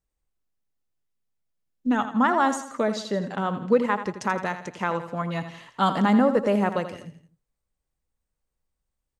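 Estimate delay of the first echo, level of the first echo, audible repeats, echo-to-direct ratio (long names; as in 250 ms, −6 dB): 83 ms, −11.0 dB, 3, −10.0 dB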